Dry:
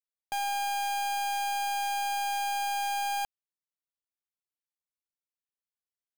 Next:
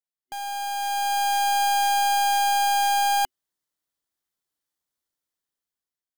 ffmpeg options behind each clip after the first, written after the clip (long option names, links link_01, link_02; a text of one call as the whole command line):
ffmpeg -i in.wav -af "superequalizer=6b=1.41:12b=0.562,dynaudnorm=framelen=430:gausssize=5:maxgain=12dB,volume=-2.5dB" out.wav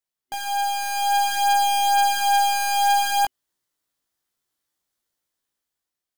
ffmpeg -i in.wav -filter_complex "[0:a]asplit=2[link_01][link_02];[link_02]alimiter=level_in=5.5dB:limit=-24dB:level=0:latency=1:release=116,volume=-5.5dB,volume=2dB[link_03];[link_01][link_03]amix=inputs=2:normalize=0,flanger=delay=17:depth=2.1:speed=0.57,volume=1.5dB" out.wav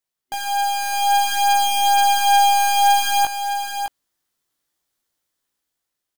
ffmpeg -i in.wav -af "aecho=1:1:612:0.398,volume=3dB" out.wav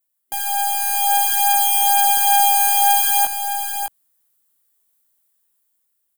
ffmpeg -i in.wav -filter_complex "[0:a]acrossover=split=130[link_01][link_02];[link_01]alimiter=level_in=11dB:limit=-24dB:level=0:latency=1,volume=-11dB[link_03];[link_02]aexciter=amount=5.5:drive=2.4:freq=7800[link_04];[link_03][link_04]amix=inputs=2:normalize=0,volume=-2dB" out.wav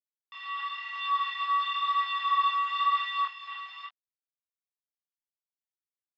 ffmpeg -i in.wav -af "aeval=exprs='val(0)*gte(abs(val(0)),0.106)':channel_layout=same,highpass=frequency=410:width_type=q:width=0.5412,highpass=frequency=410:width_type=q:width=1.307,lowpass=frequency=3300:width_type=q:width=0.5176,lowpass=frequency=3300:width_type=q:width=0.7071,lowpass=frequency=3300:width_type=q:width=1.932,afreqshift=330,flanger=delay=22.5:depth=4.7:speed=0.96,volume=-5.5dB" out.wav